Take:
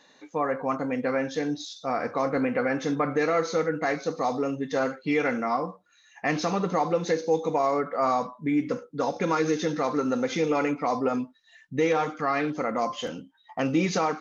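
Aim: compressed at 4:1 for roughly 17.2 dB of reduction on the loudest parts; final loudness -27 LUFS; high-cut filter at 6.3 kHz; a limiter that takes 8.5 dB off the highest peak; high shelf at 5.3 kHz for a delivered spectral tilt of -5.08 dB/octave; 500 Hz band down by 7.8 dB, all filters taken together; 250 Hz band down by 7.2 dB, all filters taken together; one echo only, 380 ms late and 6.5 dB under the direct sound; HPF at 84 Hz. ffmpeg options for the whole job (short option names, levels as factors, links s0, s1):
-af "highpass=84,lowpass=6300,equalizer=f=250:t=o:g=-6.5,equalizer=f=500:t=o:g=-7.5,highshelf=f=5300:g=-6.5,acompressor=threshold=0.00501:ratio=4,alimiter=level_in=4.47:limit=0.0631:level=0:latency=1,volume=0.224,aecho=1:1:380:0.473,volume=10.6"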